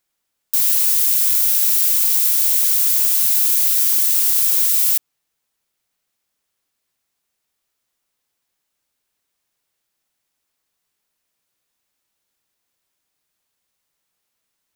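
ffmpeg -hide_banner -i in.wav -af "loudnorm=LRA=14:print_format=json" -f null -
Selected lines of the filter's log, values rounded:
"input_i" : "-13.0",
"input_tp" : "-1.9",
"input_lra" : "4.9",
"input_thresh" : "-23.0",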